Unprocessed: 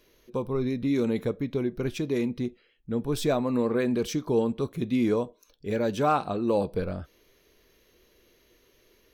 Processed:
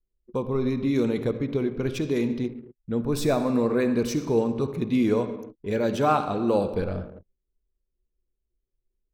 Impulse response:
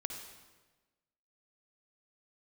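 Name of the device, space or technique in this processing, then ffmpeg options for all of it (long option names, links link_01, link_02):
keyed gated reverb: -filter_complex "[0:a]asplit=3[link_01][link_02][link_03];[1:a]atrim=start_sample=2205[link_04];[link_02][link_04]afir=irnorm=-1:irlink=0[link_05];[link_03]apad=whole_len=402754[link_06];[link_05][link_06]sidechaingate=range=-33dB:threshold=-57dB:ratio=16:detection=peak,volume=2.5dB[link_07];[link_01][link_07]amix=inputs=2:normalize=0,asettb=1/sr,asplit=3[link_08][link_09][link_10];[link_08]atrim=end=3.034[link_11];[link_09]atrim=start=3.03:end=4.9,asetpts=PTS-STARTPTS,afade=type=in:duration=0.004:curve=qsin,afade=type=out:start_time=1.866:duration=0.004:curve=qsin,bandreject=frequency=3200:width=5.3[link_12];[link_10]atrim=start=4.896[link_13];[link_11][link_12]acrossfade=duration=0.004:curve1=hsin:curve2=qsin[link_14];[link_14][link_13]acrossfade=duration=0.004:curve1=qsin:curve2=hsin,anlmdn=0.631,volume=-4.5dB"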